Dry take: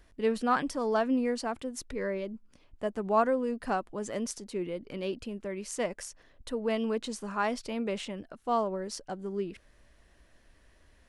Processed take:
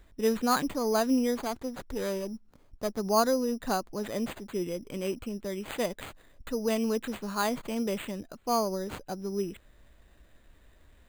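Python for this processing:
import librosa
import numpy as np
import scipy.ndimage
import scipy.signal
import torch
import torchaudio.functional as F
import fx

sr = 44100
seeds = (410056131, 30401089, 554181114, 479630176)

y = fx.low_shelf(x, sr, hz=310.0, db=4.0)
y = np.repeat(y[::8], 8)[:len(y)]
y = fx.running_max(y, sr, window=9, at=(1.35, 2.99))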